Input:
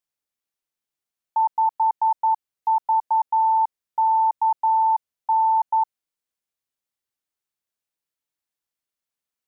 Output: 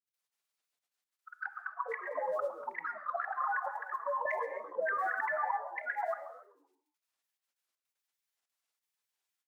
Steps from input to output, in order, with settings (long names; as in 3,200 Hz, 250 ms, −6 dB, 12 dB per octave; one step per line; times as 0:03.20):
delay that plays each chunk backwards 236 ms, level −11 dB
high-pass filter 630 Hz 12 dB per octave
output level in coarse steps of 18 dB
brickwall limiter −23.5 dBFS, peak gain reduction 9 dB
compressor whose output falls as the input rises −33 dBFS, ratio −1
formants moved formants +3 semitones
gate pattern "x.xxxxx.x" 141 BPM −12 dB
granular cloud, pitch spread up and down by 12 semitones
echo with shifted repeats 131 ms, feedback 45%, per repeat −90 Hz, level −17 dB
reverb whose tail is shaped and stops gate 300 ms flat, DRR 9 dB
wow of a warped record 33 1/3 rpm, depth 100 cents
level +3.5 dB